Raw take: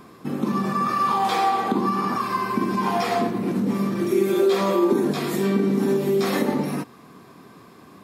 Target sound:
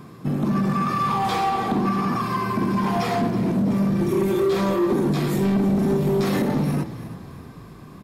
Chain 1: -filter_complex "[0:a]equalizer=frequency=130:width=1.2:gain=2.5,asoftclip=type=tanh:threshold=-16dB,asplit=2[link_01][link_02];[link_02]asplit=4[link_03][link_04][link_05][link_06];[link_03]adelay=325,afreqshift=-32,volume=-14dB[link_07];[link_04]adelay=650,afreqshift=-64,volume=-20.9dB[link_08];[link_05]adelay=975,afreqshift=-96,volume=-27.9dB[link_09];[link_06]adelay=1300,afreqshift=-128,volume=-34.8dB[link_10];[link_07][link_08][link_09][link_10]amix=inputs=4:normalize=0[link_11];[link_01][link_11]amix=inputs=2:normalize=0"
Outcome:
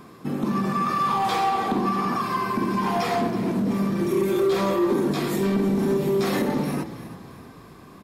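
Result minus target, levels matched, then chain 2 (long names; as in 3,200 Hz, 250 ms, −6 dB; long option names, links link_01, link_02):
125 Hz band −4.0 dB
-filter_complex "[0:a]equalizer=frequency=130:width=1.2:gain=13,asoftclip=type=tanh:threshold=-16dB,asplit=2[link_01][link_02];[link_02]asplit=4[link_03][link_04][link_05][link_06];[link_03]adelay=325,afreqshift=-32,volume=-14dB[link_07];[link_04]adelay=650,afreqshift=-64,volume=-20.9dB[link_08];[link_05]adelay=975,afreqshift=-96,volume=-27.9dB[link_09];[link_06]adelay=1300,afreqshift=-128,volume=-34.8dB[link_10];[link_07][link_08][link_09][link_10]amix=inputs=4:normalize=0[link_11];[link_01][link_11]amix=inputs=2:normalize=0"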